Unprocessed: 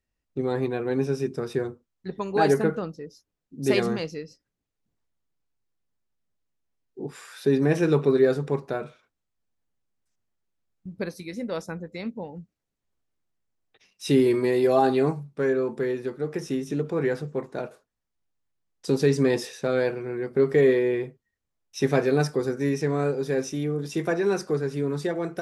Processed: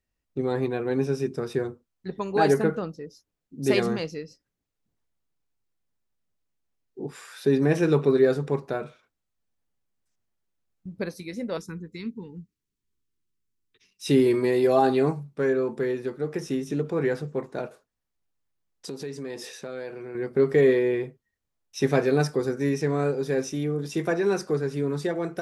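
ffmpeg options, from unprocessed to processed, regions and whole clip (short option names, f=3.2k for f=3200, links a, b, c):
-filter_complex "[0:a]asettb=1/sr,asplit=3[a][b][c];[a]atrim=end=11.574[d];[b]atrim=start=11.57:end=14.06,asetpts=PTS-STARTPTS,afade=t=in:d=0.004:c=qsin,afade=t=out:st=2.486:d=0.004:c=qsin,asuperstop=centerf=650:order=8:qfactor=1.4,equalizer=f=1.2k:w=0.7:g=-6.5[e];[c]atrim=start=14.056[f];[d][e]acrossfade=d=0.004:c1=hsin:c2=qsin[g];[g][f]acrossfade=d=0.004:c1=qsin:c2=hsin,asettb=1/sr,asplit=3[h][i][j];[h]atrim=end=18.874[k];[i]atrim=start=18.87:end=20.15,asetpts=PTS-STARTPTS,afade=t=in:d=0.004:c=qsin,afade=t=out:st=1.276:d=0.004:c=qsin,acompressor=threshold=-34dB:ratio=3:attack=3.2:release=140:knee=1:detection=peak,lowshelf=f=110:g=-11[l];[j]atrim=start=20.146[m];[k][l]acrossfade=d=0.004:c1=hsin:c2=qsin[n];[n][m]acrossfade=d=0.004:c1=qsin:c2=hsin"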